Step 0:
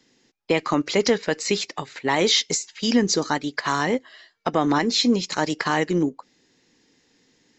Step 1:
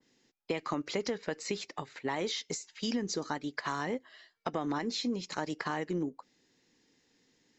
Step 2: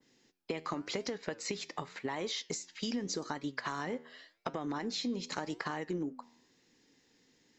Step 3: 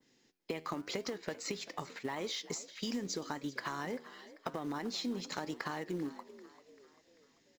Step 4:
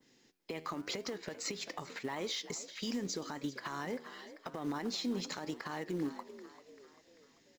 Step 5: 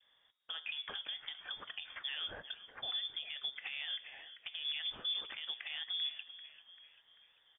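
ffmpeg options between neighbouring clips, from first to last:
ffmpeg -i in.wav -af "acompressor=threshold=-21dB:ratio=6,adynamicequalizer=threshold=0.00794:dfrequency=2100:dqfactor=0.7:tfrequency=2100:tqfactor=0.7:attack=5:release=100:ratio=0.375:range=2.5:mode=cutabove:tftype=highshelf,volume=-8dB" out.wav
ffmpeg -i in.wav -af "acompressor=threshold=-34dB:ratio=6,flanger=delay=7.1:depth=5.5:regen=89:speed=0.87:shape=sinusoidal,volume=6dB" out.wav
ffmpeg -i in.wav -filter_complex "[0:a]asplit=2[link_01][link_02];[link_02]acrusher=bits=3:mode=log:mix=0:aa=0.000001,volume=-5.5dB[link_03];[link_01][link_03]amix=inputs=2:normalize=0,asplit=5[link_04][link_05][link_06][link_07][link_08];[link_05]adelay=391,afreqshift=52,volume=-17dB[link_09];[link_06]adelay=782,afreqshift=104,volume=-23.4dB[link_10];[link_07]adelay=1173,afreqshift=156,volume=-29.8dB[link_11];[link_08]adelay=1564,afreqshift=208,volume=-36.1dB[link_12];[link_04][link_09][link_10][link_11][link_12]amix=inputs=5:normalize=0,volume=-5.5dB" out.wav
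ffmpeg -i in.wav -af "alimiter=level_in=7dB:limit=-24dB:level=0:latency=1:release=131,volume=-7dB,volume=3dB" out.wav
ffmpeg -i in.wav -af "lowpass=frequency=3100:width_type=q:width=0.5098,lowpass=frequency=3100:width_type=q:width=0.6013,lowpass=frequency=3100:width_type=q:width=0.9,lowpass=frequency=3100:width_type=q:width=2.563,afreqshift=-3700,volume=-2dB" out.wav

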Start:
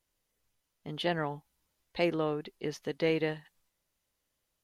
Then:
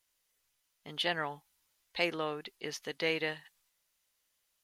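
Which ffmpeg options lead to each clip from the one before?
ffmpeg -i in.wav -af "tiltshelf=frequency=720:gain=-7.5,volume=-2.5dB" out.wav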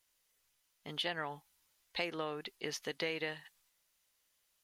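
ffmpeg -i in.wav -af "acompressor=threshold=-35dB:ratio=4,volume=1dB" out.wav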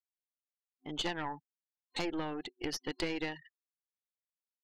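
ffmpeg -i in.wav -af "afftfilt=real='re*gte(hypot(re,im),0.00631)':imag='im*gte(hypot(re,im),0.00631)':win_size=1024:overlap=0.75,superequalizer=6b=2.82:9b=2:14b=1.58,aeval=exprs='0.112*(cos(1*acos(clip(val(0)/0.112,-1,1)))-cos(1*PI/2))+0.0562*(cos(2*acos(clip(val(0)/0.112,-1,1)))-cos(2*PI/2))+0.00447*(cos(6*acos(clip(val(0)/0.112,-1,1)))-cos(6*PI/2))':channel_layout=same" out.wav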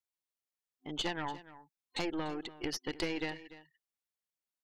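ffmpeg -i in.wav -af "aecho=1:1:292:0.15" out.wav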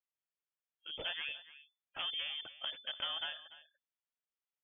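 ffmpeg -i in.wav -af "lowpass=frequency=3000:width_type=q:width=0.5098,lowpass=frequency=3000:width_type=q:width=0.6013,lowpass=frequency=3000:width_type=q:width=0.9,lowpass=frequency=3000:width_type=q:width=2.563,afreqshift=-3500,volume=-3.5dB" out.wav

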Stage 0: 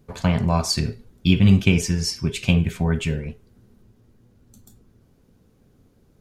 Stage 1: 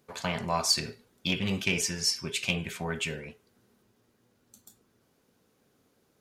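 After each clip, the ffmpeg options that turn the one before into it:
ffmpeg -i in.wav -af "acontrast=85,highpass=frequency=800:poles=1,volume=-7.5dB" out.wav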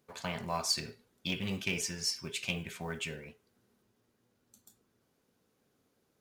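ffmpeg -i in.wav -af "acrusher=bits=7:mode=log:mix=0:aa=0.000001,volume=-6dB" out.wav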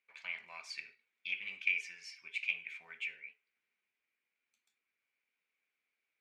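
ffmpeg -i in.wav -af "bandpass=frequency=2300:width_type=q:width=8.4:csg=0,volume=7dB" out.wav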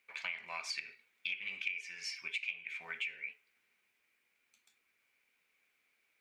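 ffmpeg -i in.wav -af "acompressor=threshold=-46dB:ratio=8,volume=10dB" out.wav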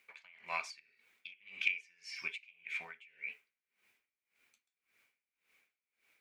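ffmpeg -i in.wav -af "aeval=exprs='val(0)*pow(10,-27*(0.5-0.5*cos(2*PI*1.8*n/s))/20)':channel_layout=same,volume=5.5dB" out.wav

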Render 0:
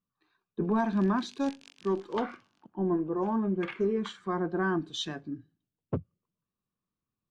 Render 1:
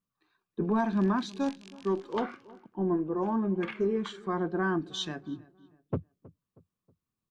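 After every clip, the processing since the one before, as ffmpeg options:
ffmpeg -i in.wav -filter_complex "[0:a]asplit=2[link_01][link_02];[link_02]adelay=318,lowpass=frequency=1800:poles=1,volume=-21dB,asplit=2[link_03][link_04];[link_04]adelay=318,lowpass=frequency=1800:poles=1,volume=0.44,asplit=2[link_05][link_06];[link_06]adelay=318,lowpass=frequency=1800:poles=1,volume=0.44[link_07];[link_01][link_03][link_05][link_07]amix=inputs=4:normalize=0" out.wav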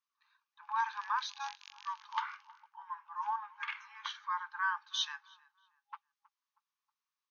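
ffmpeg -i in.wav -af "afftfilt=real='re*between(b*sr/4096,820,6700)':imag='im*between(b*sr/4096,820,6700)':win_size=4096:overlap=0.75,volume=1dB" out.wav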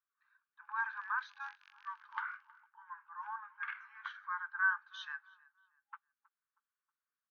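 ffmpeg -i in.wav -af "bandpass=frequency=1500:width_type=q:width=4.9:csg=0,volume=5dB" out.wav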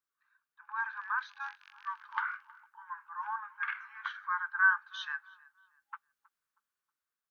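ffmpeg -i in.wav -af "dynaudnorm=framelen=360:gausssize=7:maxgain=6dB" out.wav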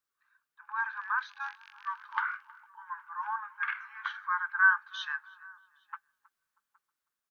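ffmpeg -i in.wav -filter_complex "[0:a]asplit=2[link_01][link_02];[link_02]adelay=816.3,volume=-25dB,highshelf=frequency=4000:gain=-18.4[link_03];[link_01][link_03]amix=inputs=2:normalize=0,volume=2.5dB" out.wav

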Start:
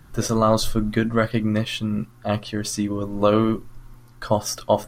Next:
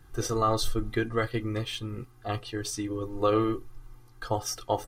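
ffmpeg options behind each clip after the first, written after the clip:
ffmpeg -i in.wav -af "aecho=1:1:2.5:0.76,volume=-8dB" out.wav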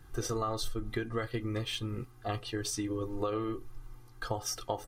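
ffmpeg -i in.wav -af "acompressor=threshold=-30dB:ratio=6" out.wav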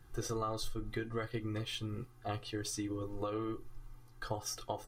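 ffmpeg -i in.wav -af "flanger=delay=8.3:depth=1.6:regen=-66:speed=0.63:shape=triangular" out.wav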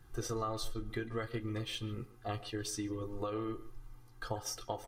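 ffmpeg -i in.wav -filter_complex "[0:a]asplit=2[link_01][link_02];[link_02]adelay=140,highpass=300,lowpass=3400,asoftclip=type=hard:threshold=-32.5dB,volume=-15dB[link_03];[link_01][link_03]amix=inputs=2:normalize=0" out.wav

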